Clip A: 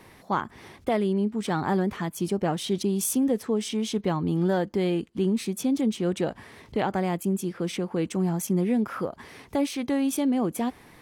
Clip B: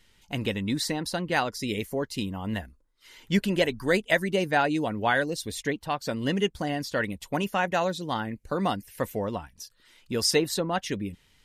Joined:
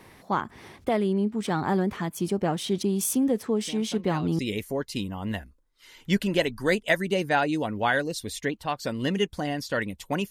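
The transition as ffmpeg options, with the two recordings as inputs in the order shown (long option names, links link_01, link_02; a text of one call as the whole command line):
ffmpeg -i cue0.wav -i cue1.wav -filter_complex "[1:a]asplit=2[link_01][link_02];[0:a]apad=whole_dur=10.3,atrim=end=10.3,atrim=end=4.392[link_03];[link_02]atrim=start=1.608:end=7.52[link_04];[link_01]atrim=start=0.83:end=1.61,asetpts=PTS-STARTPTS,volume=-13dB,afade=type=in:duration=0.004:curve=hsin,afade=type=out:start_time=0.776:duration=0.004:curve=hsin,adelay=159201S[link_05];[link_03][link_04]acrossfade=duration=0.004:curve1=hsin:curve2=hsin[link_06];[link_06][link_05]amix=inputs=2:normalize=0" out.wav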